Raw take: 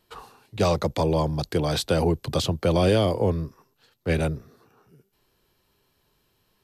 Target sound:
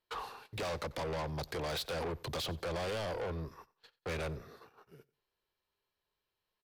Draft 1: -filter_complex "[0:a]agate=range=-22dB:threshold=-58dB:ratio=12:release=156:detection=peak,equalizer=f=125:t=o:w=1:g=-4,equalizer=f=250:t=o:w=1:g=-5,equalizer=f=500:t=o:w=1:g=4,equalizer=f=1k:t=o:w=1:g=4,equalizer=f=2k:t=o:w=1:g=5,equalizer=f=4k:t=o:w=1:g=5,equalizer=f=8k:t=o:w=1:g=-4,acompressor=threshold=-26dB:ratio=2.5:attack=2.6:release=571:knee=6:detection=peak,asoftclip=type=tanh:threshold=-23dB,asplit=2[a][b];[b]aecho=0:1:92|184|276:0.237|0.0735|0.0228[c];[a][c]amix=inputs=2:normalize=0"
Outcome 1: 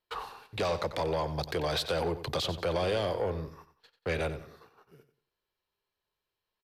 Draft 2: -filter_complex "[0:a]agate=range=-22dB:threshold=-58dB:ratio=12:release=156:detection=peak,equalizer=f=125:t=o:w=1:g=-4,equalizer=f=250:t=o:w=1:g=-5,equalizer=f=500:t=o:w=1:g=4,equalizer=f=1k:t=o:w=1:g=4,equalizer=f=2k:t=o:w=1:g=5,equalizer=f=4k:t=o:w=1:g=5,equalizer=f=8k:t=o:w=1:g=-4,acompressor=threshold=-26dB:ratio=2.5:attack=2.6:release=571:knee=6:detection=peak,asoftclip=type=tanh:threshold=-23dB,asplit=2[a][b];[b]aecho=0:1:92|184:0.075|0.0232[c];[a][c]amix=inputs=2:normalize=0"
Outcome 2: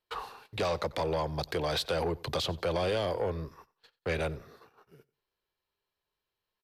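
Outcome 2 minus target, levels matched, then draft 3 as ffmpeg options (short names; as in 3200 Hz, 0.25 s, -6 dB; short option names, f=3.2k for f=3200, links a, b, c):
soft clip: distortion -10 dB
-filter_complex "[0:a]agate=range=-22dB:threshold=-58dB:ratio=12:release=156:detection=peak,equalizer=f=125:t=o:w=1:g=-4,equalizer=f=250:t=o:w=1:g=-5,equalizer=f=500:t=o:w=1:g=4,equalizer=f=1k:t=o:w=1:g=4,equalizer=f=2k:t=o:w=1:g=5,equalizer=f=4k:t=o:w=1:g=5,equalizer=f=8k:t=o:w=1:g=-4,acompressor=threshold=-26dB:ratio=2.5:attack=2.6:release=571:knee=6:detection=peak,asoftclip=type=tanh:threshold=-34.5dB,asplit=2[a][b];[b]aecho=0:1:92|184:0.075|0.0232[c];[a][c]amix=inputs=2:normalize=0"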